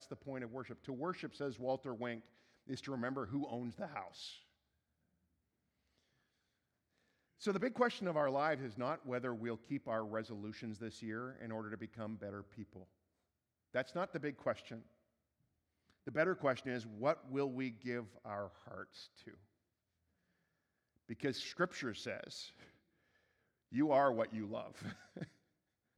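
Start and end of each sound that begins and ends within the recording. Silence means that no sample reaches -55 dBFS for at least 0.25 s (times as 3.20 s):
2.67–4.39 s
7.41–12.84 s
13.74–14.82 s
15.90–19.37 s
21.09–22.68 s
23.72–25.28 s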